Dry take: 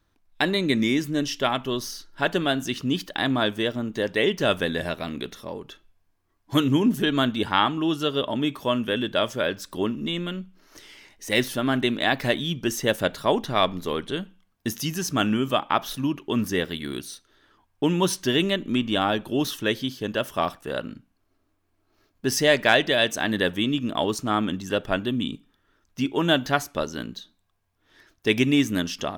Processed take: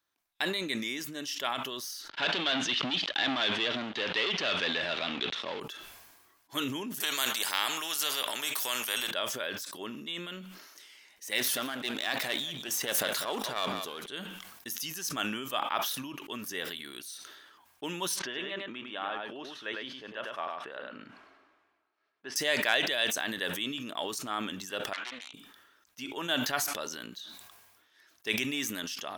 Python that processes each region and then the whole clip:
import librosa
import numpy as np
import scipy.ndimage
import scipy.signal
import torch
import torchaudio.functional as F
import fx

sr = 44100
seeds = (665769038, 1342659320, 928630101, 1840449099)

y = fx.chain(x, sr, fx.leveller(passes=5),
    fx.ladder_lowpass(hz=4200.0, resonance_pct=40),
    fx.band_squash(depth_pct=40), at=(2.09, 5.6))
y = fx.chain(y, sr, fx.bass_treble(bass_db=-14, treble_db=6),
    fx.spectral_comp(ratio=2.0), at=(7.0, 9.11))
y = fx.chain(y, sr, fx.halfwave_gain(db=-7.0),
    fx.echo_single(ms=189, db=-15.5),
    fx.sustainer(db_per_s=41.0), at=(11.38, 14.06))
y = fx.chain(y, sr, fx.lowpass(hz=2200.0, slope=12),
    fx.low_shelf(hz=270.0, db=-10.0),
    fx.echo_single(ms=103, db=-5.0), at=(18.19, 22.36))
y = fx.chain(y, sr, fx.self_delay(depth_ms=0.62),
    fx.highpass(hz=1500.0, slope=12),
    fx.spacing_loss(db_at_10k=30), at=(24.93, 25.34))
y = fx.highpass(y, sr, hz=1100.0, slope=6)
y = fx.high_shelf(y, sr, hz=9100.0, db=6.5)
y = fx.sustainer(y, sr, db_per_s=37.0)
y = y * librosa.db_to_amplitude(-7.0)